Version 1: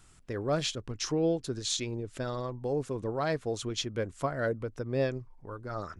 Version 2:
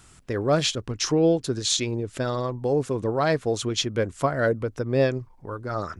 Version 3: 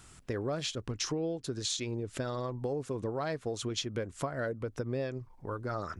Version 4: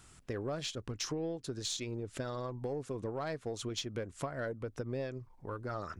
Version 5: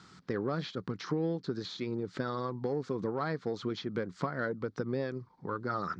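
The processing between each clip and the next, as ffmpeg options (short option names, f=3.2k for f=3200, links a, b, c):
-af "highpass=f=40:p=1,volume=8dB"
-af "acompressor=threshold=-29dB:ratio=6,volume=-2.5dB"
-af "aeval=exprs='0.119*(cos(1*acos(clip(val(0)/0.119,-1,1)))-cos(1*PI/2))+0.015*(cos(4*acos(clip(val(0)/0.119,-1,1)))-cos(4*PI/2))+0.0106*(cos(6*acos(clip(val(0)/0.119,-1,1)))-cos(6*PI/2))':c=same,volume=-3.5dB"
-filter_complex "[0:a]highpass=150,equalizer=f=180:t=q:w=4:g=9,equalizer=f=630:t=q:w=4:g=-8,equalizer=f=1.3k:t=q:w=4:g=4,equalizer=f=2.7k:t=q:w=4:g=-9,equalizer=f=4.4k:t=q:w=4:g=5,lowpass=f=5.3k:w=0.5412,lowpass=f=5.3k:w=1.3066,acrossover=split=2800[a][b];[b]acompressor=threshold=-56dB:ratio=4:attack=1:release=60[c];[a][c]amix=inputs=2:normalize=0,volume=5.5dB"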